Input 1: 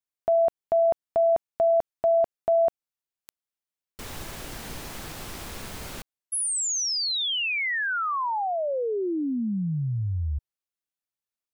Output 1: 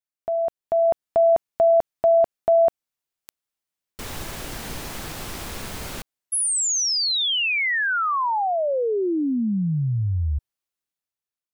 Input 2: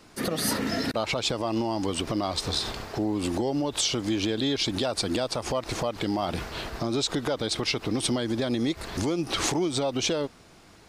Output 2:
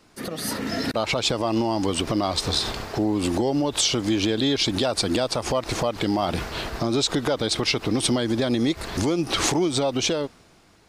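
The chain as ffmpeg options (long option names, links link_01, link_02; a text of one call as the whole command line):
ffmpeg -i in.wav -af "dynaudnorm=framelen=140:gausssize=11:maxgain=8dB,volume=-3.5dB" out.wav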